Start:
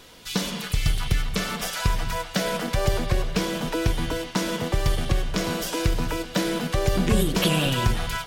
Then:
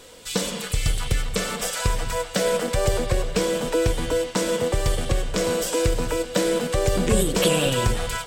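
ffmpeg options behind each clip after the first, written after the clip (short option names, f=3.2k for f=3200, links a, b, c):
-af "equalizer=f=160:t=o:w=0.33:g=-4,equalizer=f=500:t=o:w=0.33:g=10,equalizer=f=8k:t=o:w=0.33:g=11"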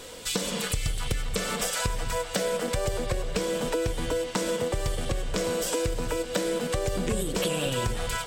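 -af "acompressor=threshold=-29dB:ratio=5,volume=3.5dB"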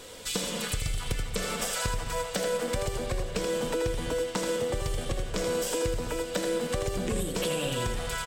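-af "aecho=1:1:81:0.473,volume=-3dB"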